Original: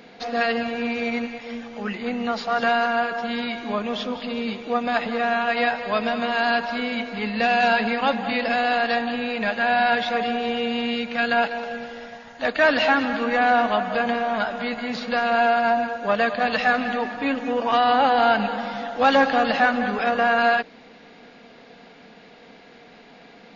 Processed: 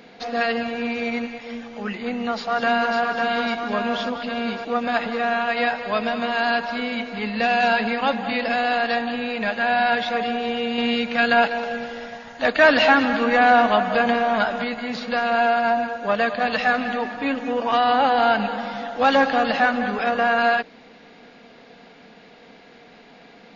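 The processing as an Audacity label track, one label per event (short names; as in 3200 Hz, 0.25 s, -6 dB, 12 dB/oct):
2.110000	2.990000	echo throw 0.55 s, feedback 65%, level -3.5 dB
10.780000	14.640000	gain +3.5 dB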